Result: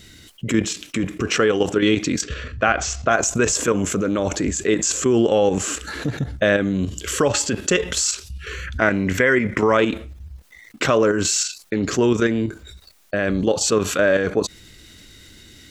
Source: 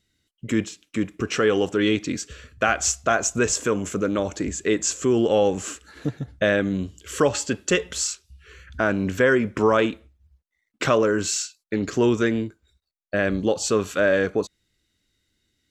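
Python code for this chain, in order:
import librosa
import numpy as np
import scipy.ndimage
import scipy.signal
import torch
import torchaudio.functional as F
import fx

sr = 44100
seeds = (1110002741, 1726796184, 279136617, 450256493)

y = fx.peak_eq(x, sr, hz=2000.0, db=13.5, octaves=0.27, at=(8.81, 9.77))
y = fx.level_steps(y, sr, step_db=10)
y = fx.air_absorb(y, sr, metres=140.0, at=(2.21, 3.1), fade=0.02)
y = fx.env_flatten(y, sr, amount_pct=50)
y = y * 10.0 ** (4.0 / 20.0)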